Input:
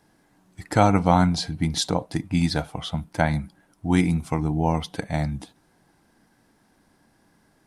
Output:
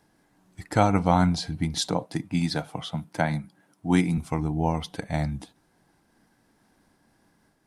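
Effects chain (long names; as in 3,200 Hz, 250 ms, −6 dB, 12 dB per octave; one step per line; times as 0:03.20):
0:01.89–0:04.18: high-pass filter 110 Hz 24 dB per octave
amplitude modulation by smooth noise, depth 55%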